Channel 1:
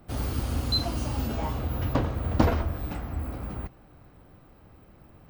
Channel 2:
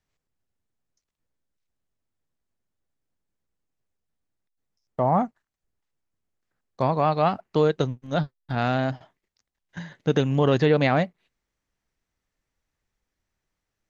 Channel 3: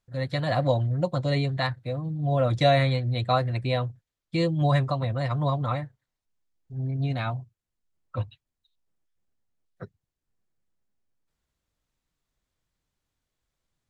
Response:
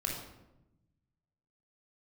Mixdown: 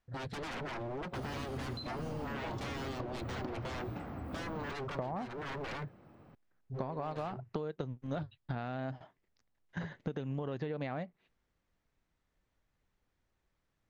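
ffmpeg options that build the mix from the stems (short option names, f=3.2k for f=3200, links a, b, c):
-filter_complex "[0:a]highpass=130,acompressor=threshold=-34dB:ratio=6,adelay=1050,volume=-2.5dB[a];[1:a]acompressor=threshold=-24dB:ratio=4,volume=0dB[b];[2:a]lowshelf=f=63:g=-4,alimiter=limit=-20.5dB:level=0:latency=1:release=78,aeval=exprs='0.0211*(abs(mod(val(0)/0.0211+3,4)-2)-1)':c=same,volume=-0.5dB[c];[a][b][c]amix=inputs=3:normalize=0,lowpass=f=2.3k:p=1,acompressor=threshold=-35dB:ratio=6"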